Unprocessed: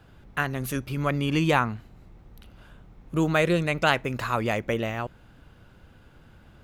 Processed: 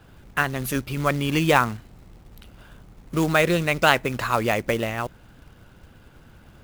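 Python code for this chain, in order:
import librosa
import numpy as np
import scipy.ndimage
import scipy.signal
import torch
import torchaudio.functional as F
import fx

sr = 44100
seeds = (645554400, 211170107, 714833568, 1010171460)

y = fx.hpss(x, sr, part='percussive', gain_db=4)
y = fx.quant_float(y, sr, bits=2)
y = y * 10.0 ** (1.0 / 20.0)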